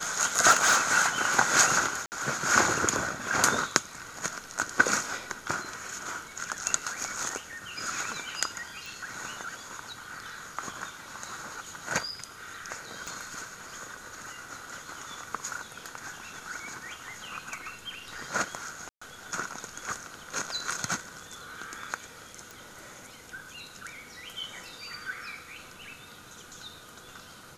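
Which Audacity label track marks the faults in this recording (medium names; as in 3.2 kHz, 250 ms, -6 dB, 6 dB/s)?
0.500000	0.980000	clipped -16 dBFS
2.060000	2.120000	dropout 59 ms
8.860000	8.860000	pop
13.070000	13.070000	pop -23 dBFS
18.890000	19.020000	dropout 125 ms
22.510000	22.510000	pop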